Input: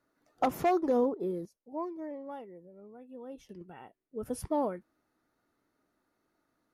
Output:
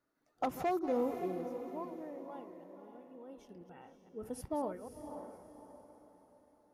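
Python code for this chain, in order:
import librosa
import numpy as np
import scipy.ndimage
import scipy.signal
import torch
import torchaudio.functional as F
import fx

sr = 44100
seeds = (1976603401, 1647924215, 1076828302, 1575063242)

y = fx.reverse_delay(x, sr, ms=132, wet_db=-11)
y = fx.echo_diffused(y, sr, ms=552, feedback_pct=40, wet_db=-9)
y = F.gain(torch.from_numpy(y), -6.5).numpy()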